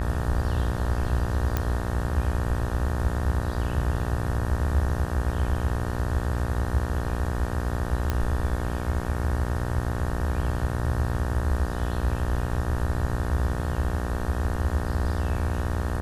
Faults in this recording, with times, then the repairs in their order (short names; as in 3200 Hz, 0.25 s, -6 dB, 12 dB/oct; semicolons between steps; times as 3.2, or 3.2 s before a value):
buzz 60 Hz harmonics 31 -30 dBFS
1.57 pop -11 dBFS
8.1 pop -12 dBFS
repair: de-click; de-hum 60 Hz, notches 31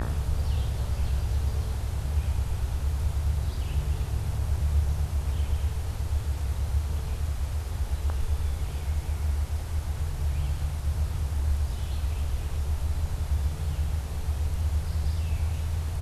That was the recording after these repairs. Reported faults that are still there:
none